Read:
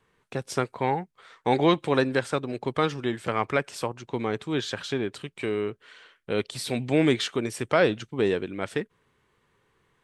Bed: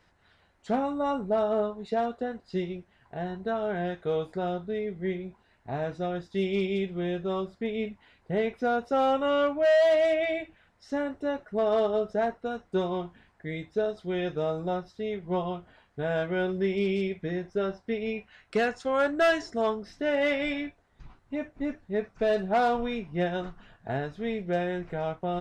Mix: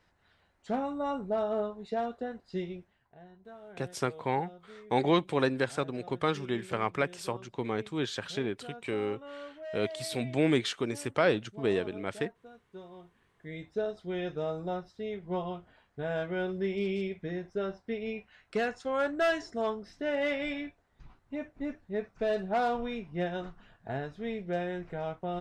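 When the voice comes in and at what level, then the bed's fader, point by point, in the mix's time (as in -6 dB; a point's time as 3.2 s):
3.45 s, -4.5 dB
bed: 2.85 s -4.5 dB
3.2 s -19.5 dB
12.93 s -19.5 dB
13.65 s -4.5 dB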